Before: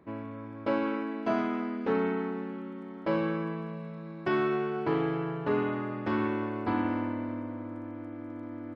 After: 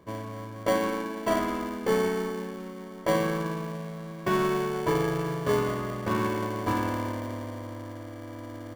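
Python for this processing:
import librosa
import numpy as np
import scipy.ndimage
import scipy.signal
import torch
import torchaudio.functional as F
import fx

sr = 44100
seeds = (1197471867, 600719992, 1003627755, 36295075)

p1 = fx.peak_eq(x, sr, hz=1000.0, db=6.0, octaves=0.24)
p2 = p1 + 0.57 * np.pad(p1, (int(1.8 * sr / 1000.0), 0))[:len(p1)]
p3 = fx.sample_hold(p2, sr, seeds[0], rate_hz=1300.0, jitter_pct=0)
y = p2 + F.gain(torch.from_numpy(p3), -5.0).numpy()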